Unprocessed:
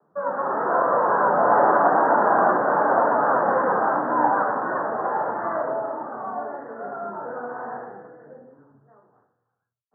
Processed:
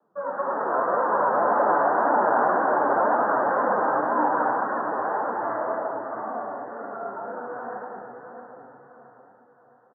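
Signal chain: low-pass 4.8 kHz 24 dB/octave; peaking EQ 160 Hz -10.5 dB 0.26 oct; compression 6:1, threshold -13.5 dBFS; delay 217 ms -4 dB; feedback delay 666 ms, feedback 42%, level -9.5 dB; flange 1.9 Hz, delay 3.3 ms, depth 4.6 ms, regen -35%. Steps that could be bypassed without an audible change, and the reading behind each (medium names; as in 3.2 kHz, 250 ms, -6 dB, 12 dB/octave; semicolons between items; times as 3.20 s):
low-pass 4.8 kHz: input has nothing above 1.9 kHz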